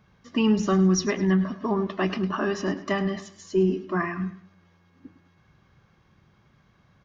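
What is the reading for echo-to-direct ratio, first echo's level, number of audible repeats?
−14.0 dB, −14.5 dB, 3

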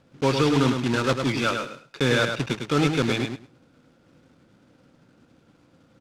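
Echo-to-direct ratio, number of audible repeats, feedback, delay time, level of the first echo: −6.0 dB, 2, 16%, 104 ms, −6.0 dB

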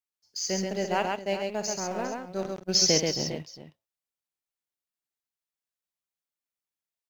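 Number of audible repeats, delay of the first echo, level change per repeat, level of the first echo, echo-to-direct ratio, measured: 3, 57 ms, repeats not evenly spaced, −11.0 dB, −2.5 dB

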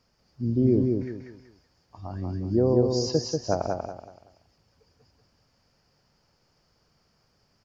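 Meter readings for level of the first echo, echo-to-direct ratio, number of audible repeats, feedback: −4.0 dB, −3.5 dB, 4, 31%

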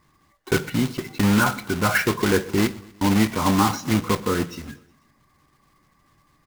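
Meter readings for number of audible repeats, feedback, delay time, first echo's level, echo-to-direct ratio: 3, 57%, 122 ms, −22.0 dB, −20.5 dB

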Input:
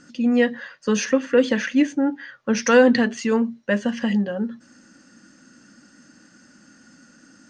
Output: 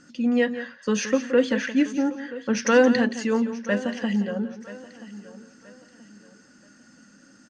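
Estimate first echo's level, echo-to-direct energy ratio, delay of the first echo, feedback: −12.5 dB, −11.0 dB, 172 ms, repeats not evenly spaced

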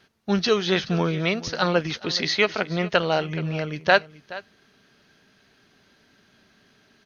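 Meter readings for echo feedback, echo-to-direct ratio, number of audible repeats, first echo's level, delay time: repeats not evenly spaced, −18.0 dB, 1, −18.0 dB, 424 ms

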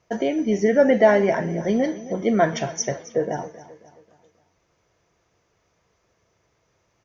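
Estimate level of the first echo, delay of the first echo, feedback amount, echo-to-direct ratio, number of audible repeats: −17.0 dB, 268 ms, 45%, −16.0 dB, 3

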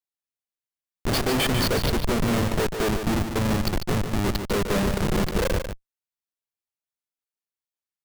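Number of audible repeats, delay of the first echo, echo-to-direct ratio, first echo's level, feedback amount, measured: 1, 146 ms, −7.5 dB, −7.5 dB, repeats not evenly spaced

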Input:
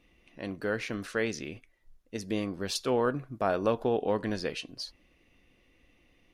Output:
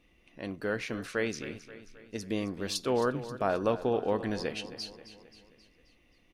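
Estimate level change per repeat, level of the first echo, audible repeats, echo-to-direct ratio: −5.5 dB, −14.0 dB, 4, −12.5 dB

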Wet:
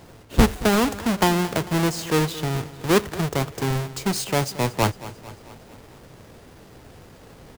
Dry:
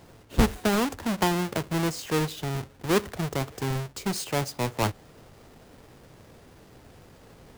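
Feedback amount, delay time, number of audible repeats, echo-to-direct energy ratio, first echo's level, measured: 58%, 224 ms, 4, −15.5 dB, −17.0 dB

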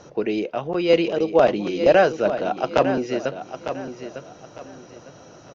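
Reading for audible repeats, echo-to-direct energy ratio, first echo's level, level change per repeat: 3, −9.5 dB, −10.0 dB, −10.5 dB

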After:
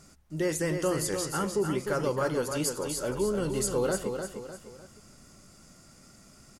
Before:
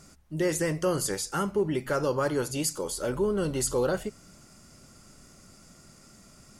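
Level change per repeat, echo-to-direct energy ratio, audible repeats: −8.0 dB, −6.0 dB, 3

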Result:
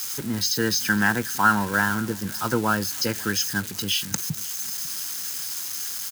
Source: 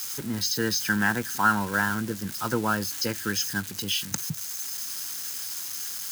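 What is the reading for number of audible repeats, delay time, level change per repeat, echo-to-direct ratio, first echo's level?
2, 545 ms, −8.5 dB, −22.5 dB, −23.0 dB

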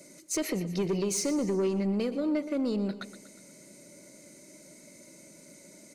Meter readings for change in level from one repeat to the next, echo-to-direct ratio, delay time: −6.0 dB, −12.5 dB, 121 ms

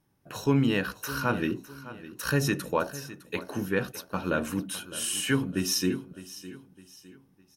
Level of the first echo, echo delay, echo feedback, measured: −16.0 dB, 608 ms, 38%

